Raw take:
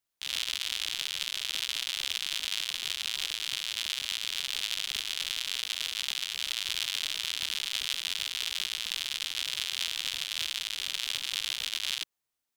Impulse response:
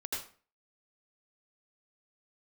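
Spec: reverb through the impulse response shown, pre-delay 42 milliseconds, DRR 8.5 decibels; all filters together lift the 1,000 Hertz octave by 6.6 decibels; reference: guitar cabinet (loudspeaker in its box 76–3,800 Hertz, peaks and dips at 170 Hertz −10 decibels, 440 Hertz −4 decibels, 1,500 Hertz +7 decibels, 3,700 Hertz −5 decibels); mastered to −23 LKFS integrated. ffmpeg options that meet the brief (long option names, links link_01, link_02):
-filter_complex "[0:a]equalizer=frequency=1000:width_type=o:gain=6,asplit=2[link_01][link_02];[1:a]atrim=start_sample=2205,adelay=42[link_03];[link_02][link_03]afir=irnorm=-1:irlink=0,volume=-10.5dB[link_04];[link_01][link_04]amix=inputs=2:normalize=0,highpass=76,equalizer=frequency=170:width_type=q:width=4:gain=-10,equalizer=frequency=440:width_type=q:width=4:gain=-4,equalizer=frequency=1500:width_type=q:width=4:gain=7,equalizer=frequency=3700:width_type=q:width=4:gain=-5,lowpass=frequency=3800:width=0.5412,lowpass=frequency=3800:width=1.3066,volume=10.5dB"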